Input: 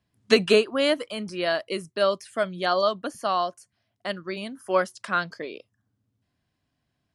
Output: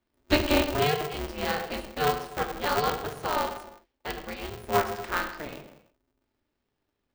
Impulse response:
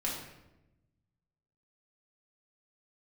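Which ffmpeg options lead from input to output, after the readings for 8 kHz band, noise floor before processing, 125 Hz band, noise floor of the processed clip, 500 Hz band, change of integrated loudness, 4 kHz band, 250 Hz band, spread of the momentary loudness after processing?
+2.5 dB, −78 dBFS, +4.5 dB, −80 dBFS, −6.0 dB, −3.0 dB, −3.5 dB, −1.5 dB, 14 LU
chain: -filter_complex "[0:a]asplit=2[link_01][link_02];[1:a]atrim=start_sample=2205,afade=type=out:start_time=0.41:duration=0.01,atrim=end_sample=18522,lowpass=5000[link_03];[link_02][link_03]afir=irnorm=-1:irlink=0,volume=-4dB[link_04];[link_01][link_04]amix=inputs=2:normalize=0,aeval=exprs='val(0)*sgn(sin(2*PI*150*n/s))':channel_layout=same,volume=-8dB"

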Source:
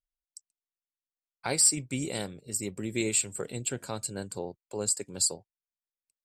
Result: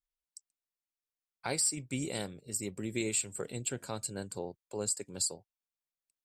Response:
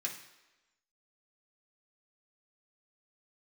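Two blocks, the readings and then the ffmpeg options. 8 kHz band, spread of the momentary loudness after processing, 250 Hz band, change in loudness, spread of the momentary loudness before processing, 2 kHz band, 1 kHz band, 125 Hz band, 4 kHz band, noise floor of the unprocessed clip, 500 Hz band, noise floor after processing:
−6.0 dB, 11 LU, −3.5 dB, −5.5 dB, 16 LU, −4.0 dB, −3.5 dB, −3.5 dB, −5.5 dB, below −85 dBFS, −3.5 dB, below −85 dBFS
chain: -af "alimiter=limit=-17.5dB:level=0:latency=1:release=262,volume=-3dB"

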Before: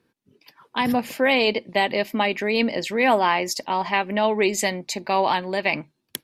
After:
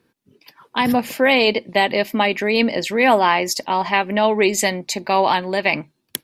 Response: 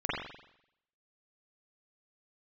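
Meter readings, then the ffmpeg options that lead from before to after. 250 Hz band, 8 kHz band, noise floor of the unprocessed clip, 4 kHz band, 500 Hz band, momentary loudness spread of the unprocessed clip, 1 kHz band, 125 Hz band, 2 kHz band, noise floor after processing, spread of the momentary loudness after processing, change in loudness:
+4.0 dB, +5.0 dB, −74 dBFS, +4.0 dB, +4.0 dB, 7 LU, +4.0 dB, +4.0 dB, +4.0 dB, −70 dBFS, 7 LU, +4.0 dB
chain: -af "highshelf=frequency=11000:gain=3.5,volume=4dB"

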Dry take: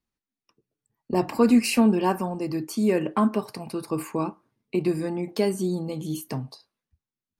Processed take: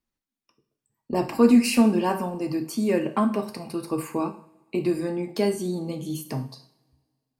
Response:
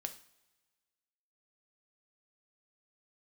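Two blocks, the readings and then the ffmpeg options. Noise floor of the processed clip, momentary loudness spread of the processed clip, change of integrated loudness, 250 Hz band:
below −85 dBFS, 15 LU, +0.5 dB, +1.0 dB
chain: -filter_complex "[1:a]atrim=start_sample=2205[link_01];[0:a][link_01]afir=irnorm=-1:irlink=0,volume=2dB"

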